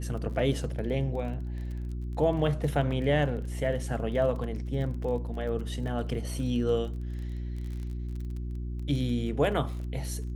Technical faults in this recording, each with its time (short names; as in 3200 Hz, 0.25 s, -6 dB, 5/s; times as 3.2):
crackle 22/s -37 dBFS
hum 60 Hz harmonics 6 -34 dBFS